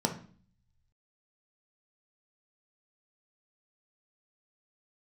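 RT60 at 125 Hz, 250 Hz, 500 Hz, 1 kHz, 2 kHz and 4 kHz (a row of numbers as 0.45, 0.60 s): 1.3, 0.75, 0.45, 0.45, 0.40, 0.45 s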